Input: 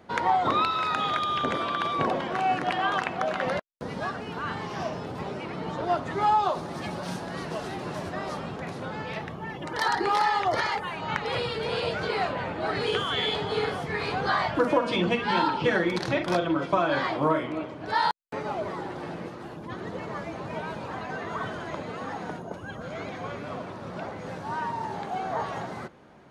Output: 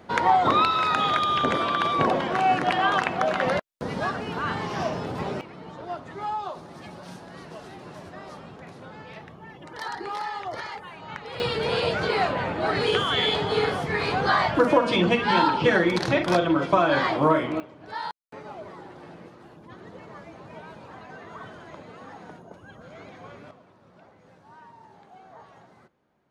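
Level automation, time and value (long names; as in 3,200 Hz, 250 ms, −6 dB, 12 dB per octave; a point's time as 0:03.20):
+4 dB
from 0:05.41 −8 dB
from 0:11.40 +4 dB
from 0:17.60 −8.5 dB
from 0:23.51 −18 dB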